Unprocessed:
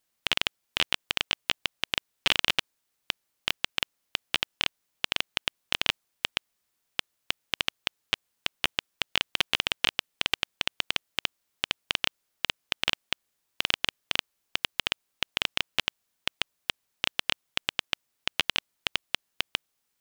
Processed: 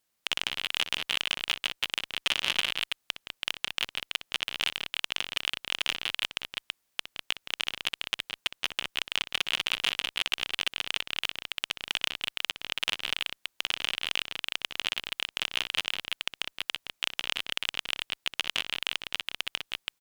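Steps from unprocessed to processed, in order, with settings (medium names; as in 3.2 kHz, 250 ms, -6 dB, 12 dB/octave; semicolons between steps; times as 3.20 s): multi-tap echo 62/169/200/330 ms -16/-15/-10/-4 dB; one-sided clip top -16 dBFS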